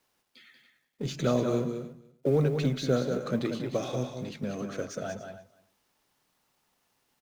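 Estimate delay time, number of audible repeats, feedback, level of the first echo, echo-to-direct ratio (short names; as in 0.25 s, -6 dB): 0.187 s, 3, no steady repeat, -7.0 dB, -6.5 dB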